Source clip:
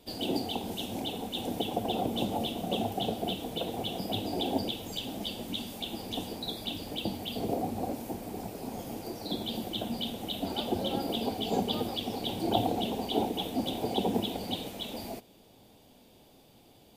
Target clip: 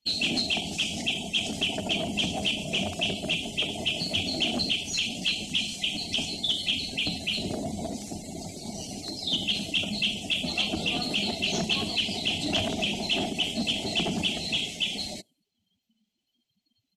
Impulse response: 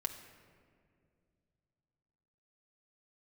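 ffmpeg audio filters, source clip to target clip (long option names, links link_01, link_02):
-filter_complex "[0:a]crystalizer=i=7:c=0,asplit=2[link_01][link_02];[link_02]asoftclip=type=tanh:threshold=-22.5dB,volume=-3.5dB[link_03];[link_01][link_03]amix=inputs=2:normalize=0,afftdn=noise_reduction=34:noise_floor=-37,asoftclip=type=hard:threshold=-18dB,lowpass=frequency=7500:width=0.5412,lowpass=frequency=7500:width=1.3066,equalizer=frequency=560:width_type=o:width=0.73:gain=-9,asetrate=39289,aresample=44100,atempo=1.12246,volume=-2dB"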